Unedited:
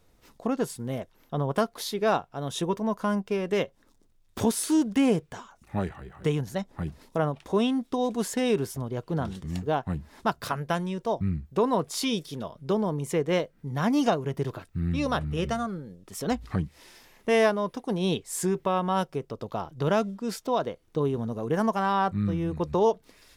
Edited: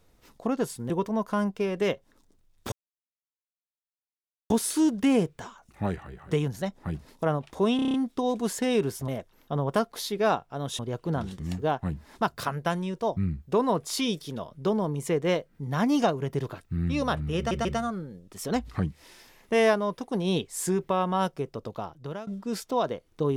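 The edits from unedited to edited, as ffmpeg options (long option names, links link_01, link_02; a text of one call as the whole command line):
ffmpeg -i in.wav -filter_complex "[0:a]asplit=14[link_01][link_02][link_03][link_04][link_05][link_06][link_07][link_08][link_09][link_10][link_11][link_12][link_13][link_14];[link_01]atrim=end=0.902[link_15];[link_02]atrim=start=2.608:end=4.43,asetpts=PTS-STARTPTS,afade=type=out:start_time=1.818:duration=0.004:curve=hsin,apad=pad_dur=1.78[link_16];[link_03]atrim=start=4.43:end=7.722,asetpts=PTS-STARTPTS,afade=type=in:duration=0.004:curve=hsin[link_17];[link_04]atrim=start=7.688:end=7.722[link_18];[link_05]atrim=start=7.688:end=7.722[link_19];[link_06]atrim=start=7.688:end=7.722[link_20];[link_07]atrim=start=7.688:end=7.722[link_21];[link_08]atrim=start=7.688:end=7.722[link_22];[link_09]atrim=start=7.688:end=8.832[link_23];[link_10]atrim=start=0.898:end=2.612[link_24];[link_11]atrim=start=8.828:end=15.552[link_25];[link_12]atrim=start=15.408:end=15.552[link_26];[link_13]atrim=start=15.408:end=20.03,asetpts=PTS-STARTPTS,afade=type=out:start_time=3.952:duration=0.67:silence=0.0891251[link_27];[link_14]atrim=start=20.03,asetpts=PTS-STARTPTS,afade=type=in:duration=0.004:curve=hsin:silence=0.0891251[link_28];[link_16][link_17]concat=n=2:v=0:a=1[link_29];[link_15][link_29]acrossfade=duration=0.004:curve1=hsin:curve2=hsin[link_30];[link_30][link_18]acrossfade=duration=0.004:curve1=hsin:curve2=hsin[link_31];[link_31][link_19]acrossfade=duration=0.004:curve1=hsin:curve2=hsin[link_32];[link_32][link_20]acrossfade=duration=0.004:curve1=hsin:curve2=hsin[link_33];[link_33][link_21]acrossfade=duration=0.004:curve1=hsin:curve2=hsin[link_34];[link_34][link_22]acrossfade=duration=0.004:curve1=hsin:curve2=hsin[link_35];[link_35][link_23]acrossfade=duration=0.004:curve1=hsin:curve2=hsin[link_36];[link_36][link_24]acrossfade=duration=0.004:curve1=hsin:curve2=hsin[link_37];[link_37][link_25]acrossfade=duration=0.004:curve1=hsin:curve2=hsin[link_38];[link_38][link_26]acrossfade=duration=0.004:curve1=hsin:curve2=hsin[link_39];[link_27][link_28]concat=n=2:v=0:a=1[link_40];[link_39][link_40]acrossfade=duration=0.004:curve1=hsin:curve2=hsin" out.wav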